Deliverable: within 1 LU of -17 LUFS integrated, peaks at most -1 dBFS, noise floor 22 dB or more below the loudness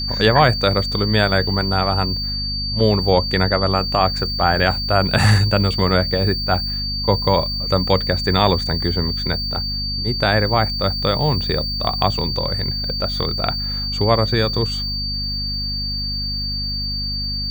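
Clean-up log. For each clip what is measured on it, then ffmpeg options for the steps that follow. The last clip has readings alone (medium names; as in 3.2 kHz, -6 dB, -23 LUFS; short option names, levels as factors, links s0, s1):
hum 50 Hz; highest harmonic 250 Hz; hum level -26 dBFS; steady tone 4.6 kHz; tone level -23 dBFS; loudness -18.5 LUFS; peak level -1.5 dBFS; loudness target -17.0 LUFS
-> -af "bandreject=f=50:t=h:w=6,bandreject=f=100:t=h:w=6,bandreject=f=150:t=h:w=6,bandreject=f=200:t=h:w=6,bandreject=f=250:t=h:w=6"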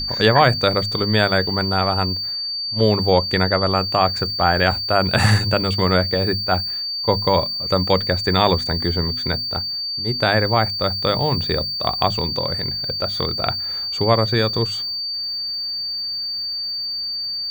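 hum not found; steady tone 4.6 kHz; tone level -23 dBFS
-> -af "bandreject=f=4600:w=30"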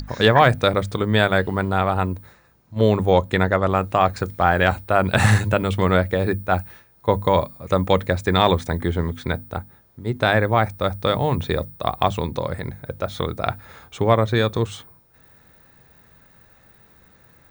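steady tone not found; loudness -20.5 LUFS; peak level -2.0 dBFS; loudness target -17.0 LUFS
-> -af "volume=1.5,alimiter=limit=0.891:level=0:latency=1"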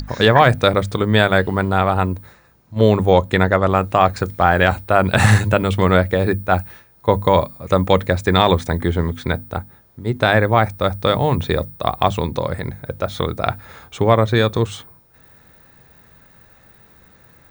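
loudness -17.5 LUFS; peak level -1.0 dBFS; noise floor -51 dBFS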